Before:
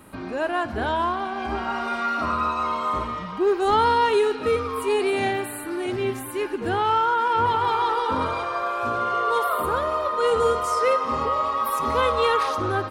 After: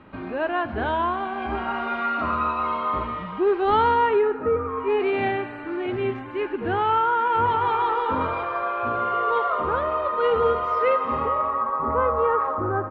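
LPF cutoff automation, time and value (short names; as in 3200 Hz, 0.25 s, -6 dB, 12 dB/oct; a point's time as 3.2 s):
LPF 24 dB/oct
3.8 s 3200 Hz
4.53 s 1500 Hz
5.1 s 2900 Hz
11.14 s 2900 Hz
11.78 s 1500 Hz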